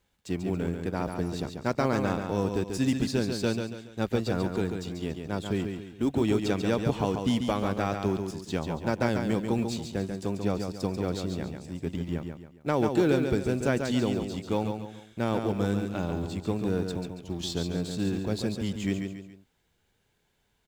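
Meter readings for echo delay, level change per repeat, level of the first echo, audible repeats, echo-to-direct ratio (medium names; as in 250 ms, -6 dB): 140 ms, -8.0 dB, -6.0 dB, 3, -5.5 dB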